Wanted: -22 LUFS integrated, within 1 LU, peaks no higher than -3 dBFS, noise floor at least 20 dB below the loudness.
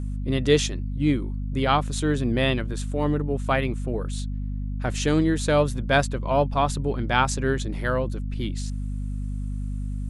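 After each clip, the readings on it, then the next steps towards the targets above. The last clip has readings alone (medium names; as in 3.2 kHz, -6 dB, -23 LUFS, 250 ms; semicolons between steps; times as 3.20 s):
hum 50 Hz; highest harmonic 250 Hz; hum level -26 dBFS; loudness -25.0 LUFS; peak level -5.0 dBFS; loudness target -22.0 LUFS
-> hum notches 50/100/150/200/250 Hz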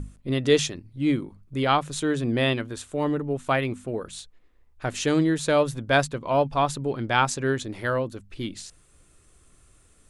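hum not found; loudness -25.5 LUFS; peak level -5.0 dBFS; loudness target -22.0 LUFS
-> trim +3.5 dB; peak limiter -3 dBFS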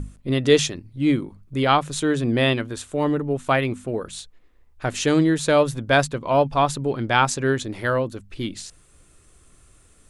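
loudness -22.0 LUFS; peak level -3.0 dBFS; noise floor -55 dBFS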